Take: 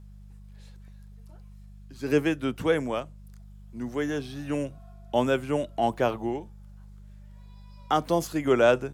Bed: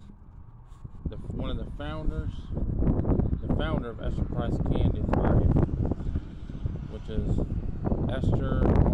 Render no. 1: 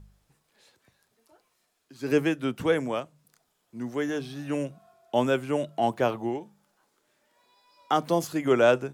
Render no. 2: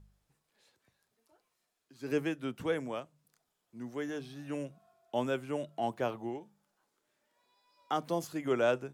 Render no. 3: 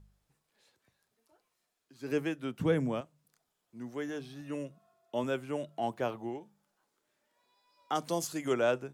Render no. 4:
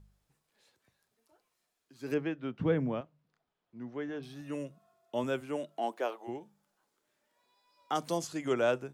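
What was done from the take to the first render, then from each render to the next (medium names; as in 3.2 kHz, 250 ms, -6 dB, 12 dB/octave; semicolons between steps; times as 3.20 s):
de-hum 50 Hz, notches 4
trim -8.5 dB
2.61–3.01 s: peaking EQ 150 Hz +13 dB 2 oct; 4.41–5.24 s: comb of notches 770 Hz; 7.95–8.54 s: peaking EQ 7.6 kHz +10.5 dB 1.9 oct
2.14–4.23 s: distance through air 230 m; 5.40–6.27 s: high-pass 130 Hz -> 450 Hz 24 dB/octave; 8.17–8.57 s: distance through air 50 m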